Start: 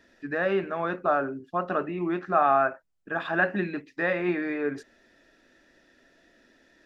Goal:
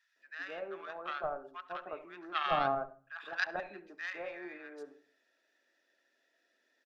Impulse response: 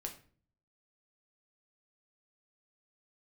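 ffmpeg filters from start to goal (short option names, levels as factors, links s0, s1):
-filter_complex "[0:a]highpass=560,aeval=exprs='0.266*(cos(1*acos(clip(val(0)/0.266,-1,1)))-cos(1*PI/2))+0.0596*(cos(3*acos(clip(val(0)/0.266,-1,1)))-cos(3*PI/2))':c=same,acrossover=split=1100[s0][s1];[s0]adelay=160[s2];[s2][s1]amix=inputs=2:normalize=0,asplit=2[s3][s4];[1:a]atrim=start_sample=2205,highshelf=f=2400:g=-11,adelay=70[s5];[s4][s5]afir=irnorm=-1:irlink=0,volume=0.282[s6];[s3][s6]amix=inputs=2:normalize=0,volume=0.75"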